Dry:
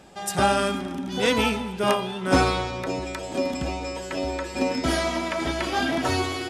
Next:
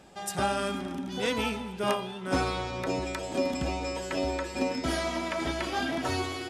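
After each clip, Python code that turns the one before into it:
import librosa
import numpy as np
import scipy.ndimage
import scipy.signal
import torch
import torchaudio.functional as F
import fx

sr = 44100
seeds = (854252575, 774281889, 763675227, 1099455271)

y = fx.rider(x, sr, range_db=4, speed_s=0.5)
y = y * 10.0 ** (-5.5 / 20.0)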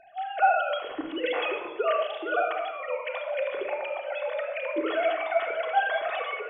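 y = fx.sine_speech(x, sr)
y = fx.room_shoebox(y, sr, seeds[0], volume_m3=3300.0, walls='furnished', distance_m=3.4)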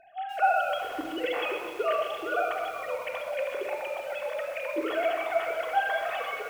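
y = fx.echo_crushed(x, sr, ms=128, feedback_pct=80, bits=7, wet_db=-11)
y = y * 10.0 ** (-2.0 / 20.0)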